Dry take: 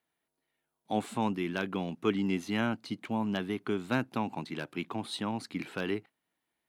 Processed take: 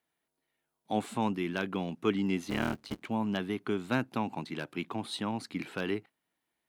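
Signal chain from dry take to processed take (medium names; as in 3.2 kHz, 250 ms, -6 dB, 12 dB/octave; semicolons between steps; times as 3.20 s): 2.49–3.05 s: cycle switcher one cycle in 3, muted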